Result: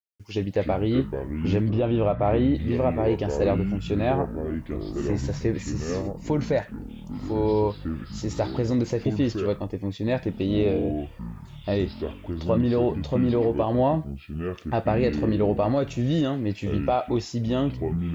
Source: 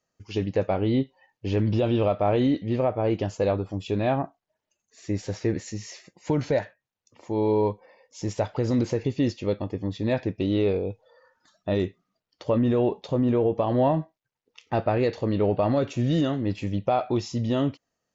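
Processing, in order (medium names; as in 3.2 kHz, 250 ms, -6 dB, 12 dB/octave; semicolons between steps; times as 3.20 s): ever faster or slower copies 150 ms, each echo -6 st, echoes 3, each echo -6 dB; bit crusher 11-bit; 1.70–2.55 s: low-pass 2.7 kHz 12 dB/octave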